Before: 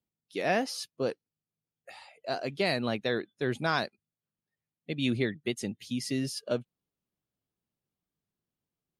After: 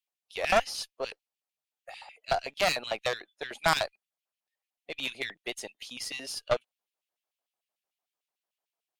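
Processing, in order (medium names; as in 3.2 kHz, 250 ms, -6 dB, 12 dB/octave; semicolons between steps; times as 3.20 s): LFO high-pass square 6.7 Hz 700–2600 Hz; Chebyshev shaper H 6 -8 dB, 8 -11 dB, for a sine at -12 dBFS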